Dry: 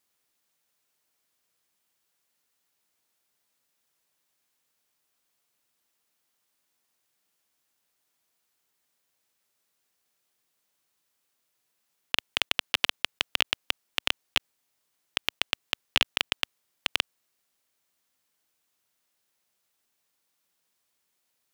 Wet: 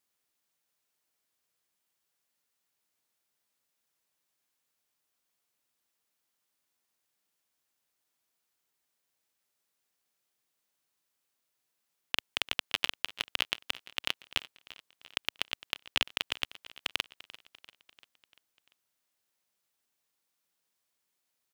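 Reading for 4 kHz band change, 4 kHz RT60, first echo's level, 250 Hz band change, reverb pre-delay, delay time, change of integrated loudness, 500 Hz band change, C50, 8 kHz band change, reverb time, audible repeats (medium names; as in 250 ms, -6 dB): -5.0 dB, no reverb, -18.5 dB, -5.0 dB, no reverb, 344 ms, -5.0 dB, -5.0 dB, no reverb, -5.0 dB, no reverb, 4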